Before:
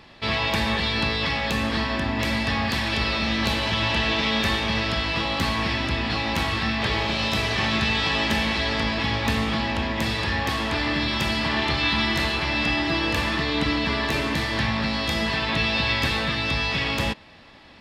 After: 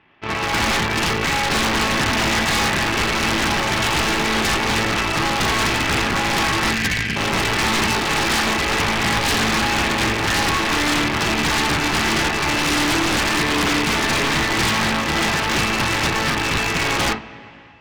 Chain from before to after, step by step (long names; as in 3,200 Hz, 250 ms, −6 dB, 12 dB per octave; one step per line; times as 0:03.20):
variable-slope delta modulation 16 kbit/s
gain on a spectral selection 0:06.73–0:07.16, 280–1,500 Hz −29 dB
harmonic generator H 5 −34 dB, 6 −21 dB, 7 −18 dB, 8 −20 dB, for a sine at −11.5 dBFS
automatic gain control gain up to 13 dB
low-shelf EQ 100 Hz −11.5 dB
convolution reverb, pre-delay 3 ms, DRR 6.5 dB
wave folding −19 dBFS
parametric band 560 Hz −6.5 dB 0.35 octaves
level +6 dB